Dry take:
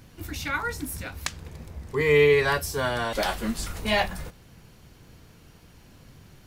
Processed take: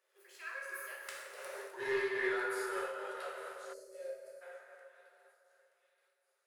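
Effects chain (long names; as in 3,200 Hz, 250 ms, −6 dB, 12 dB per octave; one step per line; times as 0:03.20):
source passing by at 0:01.48, 48 m/s, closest 2.5 metres
in parallel at +1 dB: downward compressor, threshold −47 dBFS, peak gain reduction 13 dB
on the sum: Chebyshev high-pass with heavy ripple 380 Hz, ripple 9 dB
parametric band 10,000 Hz +10 dB 0.25 octaves
on a send: delay with a high-pass on its return 926 ms, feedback 50%, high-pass 3,700 Hz, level −19 dB
on the sum: soft clipping −38.5 dBFS, distortion −12 dB
dense smooth reverb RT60 3.4 s, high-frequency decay 0.45×, DRR −4.5 dB
gain on a spectral selection 0:03.73–0:04.42, 680–4,100 Hz −19 dB
amplitude modulation by smooth noise, depth 60%
level +7.5 dB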